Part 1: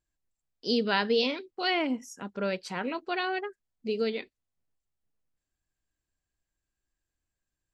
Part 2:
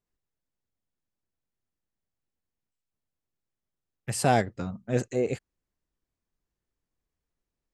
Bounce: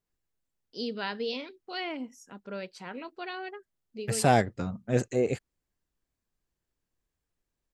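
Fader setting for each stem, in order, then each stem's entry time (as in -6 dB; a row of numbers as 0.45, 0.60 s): -7.5, +0.5 dB; 0.10, 0.00 s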